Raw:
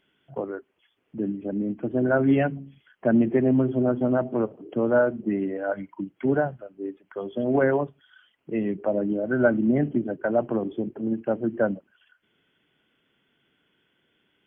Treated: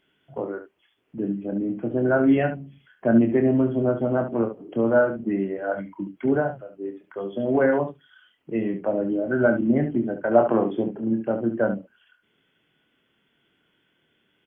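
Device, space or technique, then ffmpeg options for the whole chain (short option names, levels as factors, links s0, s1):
slapback doubling: -filter_complex "[0:a]asettb=1/sr,asplit=3[s0][s1][s2];[s0]atrim=end=10.314[s3];[s1]atrim=start=10.31:end=10.88,asetpts=PTS-STARTPTS,afade=t=in:d=0.004:c=qsin,afade=t=out:st=0.566:d=0.004:c=qsin,equalizer=f=1200:w=0.41:g=9.5[s4];[s2]atrim=start=10.876[s5];[s3][s4]acrossfade=d=0.004:c1=hsin:c2=qsin[s6];[s6][s5]acrossfade=d=0.004:c1=qsin:c2=hsin,asplit=3[s7][s8][s9];[s8]adelay=26,volume=0.447[s10];[s9]adelay=71,volume=0.335[s11];[s7][s10][s11]amix=inputs=3:normalize=0"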